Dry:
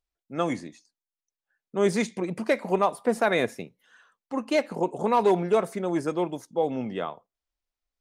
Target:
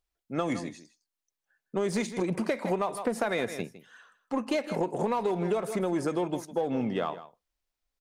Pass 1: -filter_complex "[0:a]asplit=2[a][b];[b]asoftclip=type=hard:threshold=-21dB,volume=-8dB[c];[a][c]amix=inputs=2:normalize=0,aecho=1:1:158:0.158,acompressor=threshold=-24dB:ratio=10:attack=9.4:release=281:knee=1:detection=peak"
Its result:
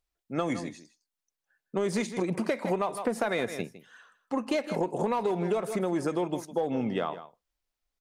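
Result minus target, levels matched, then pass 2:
hard clip: distortion -6 dB
-filter_complex "[0:a]asplit=2[a][b];[b]asoftclip=type=hard:threshold=-29.5dB,volume=-8dB[c];[a][c]amix=inputs=2:normalize=0,aecho=1:1:158:0.158,acompressor=threshold=-24dB:ratio=10:attack=9.4:release=281:knee=1:detection=peak"

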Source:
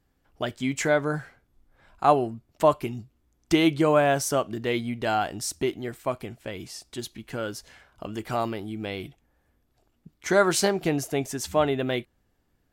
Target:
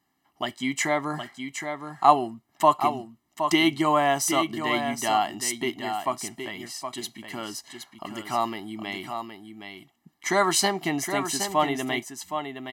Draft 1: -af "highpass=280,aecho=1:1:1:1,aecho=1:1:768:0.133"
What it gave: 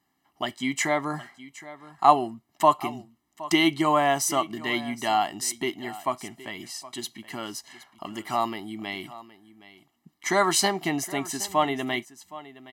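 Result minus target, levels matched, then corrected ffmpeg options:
echo-to-direct -10 dB
-af "highpass=280,aecho=1:1:1:1,aecho=1:1:768:0.422"

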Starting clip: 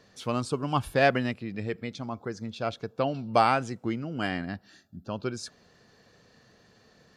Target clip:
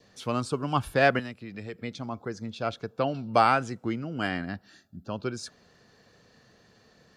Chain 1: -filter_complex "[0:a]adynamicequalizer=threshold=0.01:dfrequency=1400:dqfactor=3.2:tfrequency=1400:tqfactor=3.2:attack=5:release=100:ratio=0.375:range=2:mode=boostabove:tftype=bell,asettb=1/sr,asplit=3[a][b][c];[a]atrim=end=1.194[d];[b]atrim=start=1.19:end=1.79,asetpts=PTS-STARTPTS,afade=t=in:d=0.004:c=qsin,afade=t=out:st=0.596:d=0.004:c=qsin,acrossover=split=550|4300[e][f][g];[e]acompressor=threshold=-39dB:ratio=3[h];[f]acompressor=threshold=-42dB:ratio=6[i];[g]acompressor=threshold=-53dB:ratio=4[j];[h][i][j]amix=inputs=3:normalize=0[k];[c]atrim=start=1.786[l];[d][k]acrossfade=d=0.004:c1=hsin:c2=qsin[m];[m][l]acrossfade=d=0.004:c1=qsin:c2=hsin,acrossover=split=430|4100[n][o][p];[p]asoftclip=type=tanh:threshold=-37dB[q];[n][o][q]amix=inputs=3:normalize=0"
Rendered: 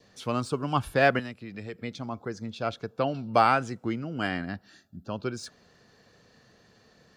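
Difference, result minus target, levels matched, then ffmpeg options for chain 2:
soft clip: distortion +14 dB
-filter_complex "[0:a]adynamicequalizer=threshold=0.01:dfrequency=1400:dqfactor=3.2:tfrequency=1400:tqfactor=3.2:attack=5:release=100:ratio=0.375:range=2:mode=boostabove:tftype=bell,asettb=1/sr,asplit=3[a][b][c];[a]atrim=end=1.194[d];[b]atrim=start=1.19:end=1.79,asetpts=PTS-STARTPTS,afade=t=in:d=0.004:c=qsin,afade=t=out:st=0.596:d=0.004:c=qsin,acrossover=split=550|4300[e][f][g];[e]acompressor=threshold=-39dB:ratio=3[h];[f]acompressor=threshold=-42dB:ratio=6[i];[g]acompressor=threshold=-53dB:ratio=4[j];[h][i][j]amix=inputs=3:normalize=0[k];[c]atrim=start=1.786[l];[d][k]acrossfade=d=0.004:c1=hsin:c2=qsin[m];[m][l]acrossfade=d=0.004:c1=qsin:c2=hsin,acrossover=split=430|4100[n][o][p];[p]asoftclip=type=tanh:threshold=-26.5dB[q];[n][o][q]amix=inputs=3:normalize=0"

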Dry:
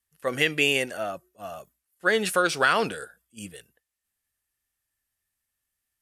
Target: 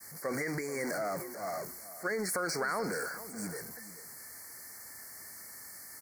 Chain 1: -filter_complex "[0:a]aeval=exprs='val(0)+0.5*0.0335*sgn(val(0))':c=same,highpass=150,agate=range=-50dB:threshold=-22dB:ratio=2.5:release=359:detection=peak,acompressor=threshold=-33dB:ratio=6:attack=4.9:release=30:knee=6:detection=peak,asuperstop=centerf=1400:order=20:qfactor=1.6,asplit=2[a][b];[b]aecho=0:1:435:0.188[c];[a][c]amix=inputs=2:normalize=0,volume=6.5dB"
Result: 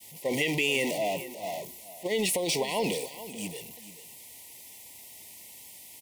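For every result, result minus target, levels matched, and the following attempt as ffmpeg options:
compressor: peak gain reduction -6 dB; 4000 Hz band +5.5 dB
-filter_complex "[0:a]aeval=exprs='val(0)+0.5*0.0335*sgn(val(0))':c=same,highpass=150,agate=range=-50dB:threshold=-22dB:ratio=2.5:release=359:detection=peak,acompressor=threshold=-40.5dB:ratio=6:attack=4.9:release=30:knee=6:detection=peak,asuperstop=centerf=1400:order=20:qfactor=1.6,asplit=2[a][b];[b]aecho=0:1:435:0.188[c];[a][c]amix=inputs=2:normalize=0,volume=6.5dB"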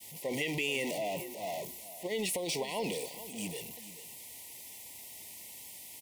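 4000 Hz band +7.0 dB
-filter_complex "[0:a]aeval=exprs='val(0)+0.5*0.0335*sgn(val(0))':c=same,highpass=150,agate=range=-50dB:threshold=-22dB:ratio=2.5:release=359:detection=peak,acompressor=threshold=-40.5dB:ratio=6:attack=4.9:release=30:knee=6:detection=peak,asuperstop=centerf=3100:order=20:qfactor=1.6,asplit=2[a][b];[b]aecho=0:1:435:0.188[c];[a][c]amix=inputs=2:normalize=0,volume=6.5dB"

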